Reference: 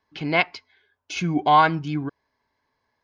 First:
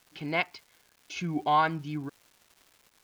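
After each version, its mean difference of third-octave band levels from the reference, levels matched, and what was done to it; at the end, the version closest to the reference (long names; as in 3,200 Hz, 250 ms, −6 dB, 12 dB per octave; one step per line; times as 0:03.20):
2.5 dB: surface crackle 570 per second −40 dBFS
level −8 dB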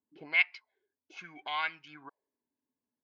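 7.5 dB: high-shelf EQ 3,300 Hz +10 dB
envelope filter 250–2,300 Hz, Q 3.3, up, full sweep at −19 dBFS
level −4.5 dB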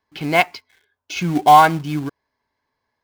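5.0 dB: dynamic equaliser 740 Hz, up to +6 dB, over −30 dBFS, Q 4
in parallel at −3.5 dB: log-companded quantiser 4 bits
on the sum: level −1.5 dB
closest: first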